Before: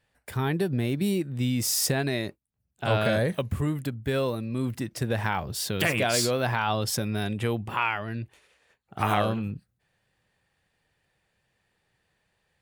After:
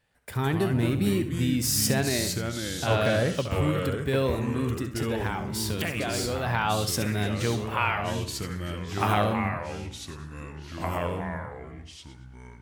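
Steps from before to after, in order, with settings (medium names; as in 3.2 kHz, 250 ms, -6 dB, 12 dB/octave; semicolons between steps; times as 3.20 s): 4.75–6.47 s: compression, threshold -27 dBFS, peak gain reduction 7.5 dB; flutter echo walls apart 11.5 m, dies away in 0.37 s; ever faster or slower copies 106 ms, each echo -3 st, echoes 3, each echo -6 dB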